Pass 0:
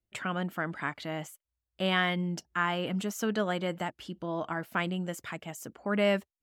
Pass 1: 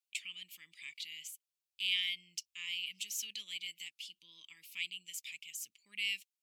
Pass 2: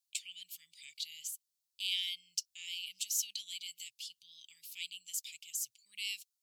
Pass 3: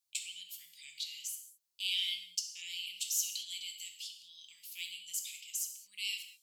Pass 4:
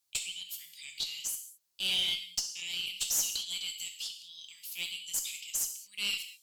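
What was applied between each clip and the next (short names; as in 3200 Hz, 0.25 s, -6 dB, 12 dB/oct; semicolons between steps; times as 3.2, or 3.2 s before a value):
elliptic high-pass 2400 Hz, stop band 40 dB; gain +2.5 dB
EQ curve 120 Hz 0 dB, 230 Hz -21 dB, 1800 Hz -14 dB, 4300 Hz +6 dB
non-linear reverb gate 0.24 s falling, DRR 3.5 dB
tube stage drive 29 dB, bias 0.25; gain +6.5 dB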